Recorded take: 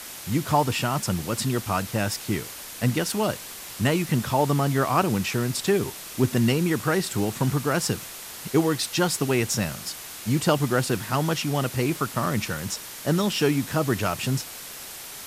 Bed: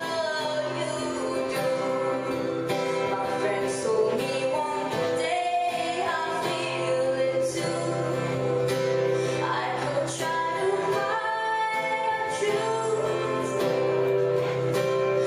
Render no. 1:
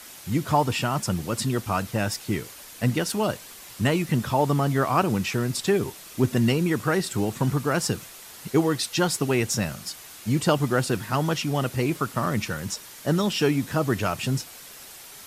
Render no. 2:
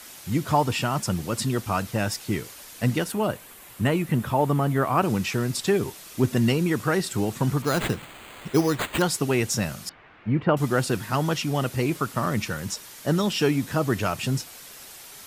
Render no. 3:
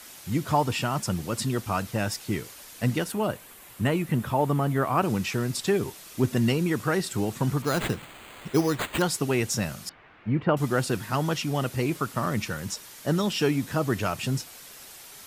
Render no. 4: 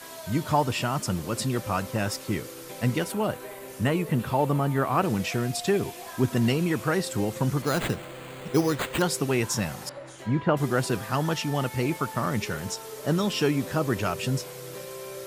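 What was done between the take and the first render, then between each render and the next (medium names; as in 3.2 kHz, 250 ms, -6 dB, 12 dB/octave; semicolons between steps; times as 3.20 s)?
noise reduction 6 dB, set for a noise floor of -39 dBFS
3.04–5.03 s: peaking EQ 5.3 kHz -9.5 dB 1.2 oct; 7.62–9.02 s: careless resampling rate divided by 8×, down none, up hold; 9.89–10.57 s: low-pass 2.3 kHz 24 dB/octave
trim -2 dB
add bed -15 dB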